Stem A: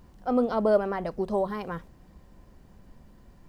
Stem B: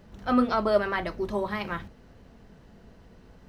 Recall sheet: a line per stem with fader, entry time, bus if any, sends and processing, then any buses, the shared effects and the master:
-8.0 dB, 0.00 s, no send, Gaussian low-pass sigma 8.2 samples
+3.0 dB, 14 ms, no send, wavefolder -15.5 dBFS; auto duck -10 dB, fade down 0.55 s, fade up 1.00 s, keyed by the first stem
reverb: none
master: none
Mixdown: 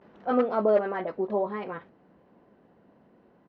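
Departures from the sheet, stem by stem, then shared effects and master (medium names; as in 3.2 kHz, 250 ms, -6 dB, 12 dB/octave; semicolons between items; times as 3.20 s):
stem A -8.0 dB -> +2.5 dB; master: extra band-pass 280–2300 Hz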